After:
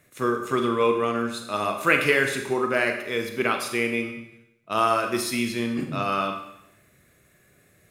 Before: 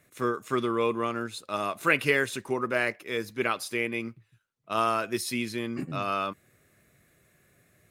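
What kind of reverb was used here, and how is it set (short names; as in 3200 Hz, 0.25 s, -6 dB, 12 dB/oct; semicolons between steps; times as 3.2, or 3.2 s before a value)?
Schroeder reverb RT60 0.83 s, combs from 30 ms, DRR 4.5 dB; gain +3 dB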